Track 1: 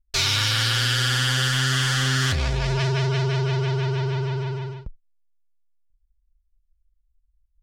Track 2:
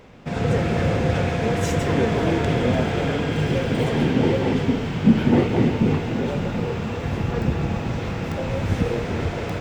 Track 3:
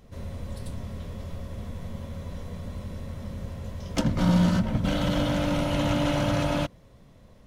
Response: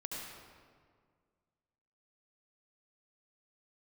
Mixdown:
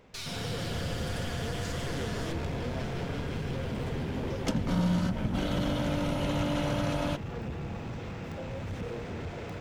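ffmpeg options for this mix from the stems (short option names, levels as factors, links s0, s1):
-filter_complex "[0:a]aeval=exprs='(tanh(10*val(0)+0.75)-tanh(0.75))/10':c=same,volume=0.211[s0];[1:a]asoftclip=type=tanh:threshold=0.1,volume=0.299[s1];[2:a]adelay=500,volume=0.794[s2];[s0][s1][s2]amix=inputs=3:normalize=0,acompressor=threshold=0.0282:ratio=1.5"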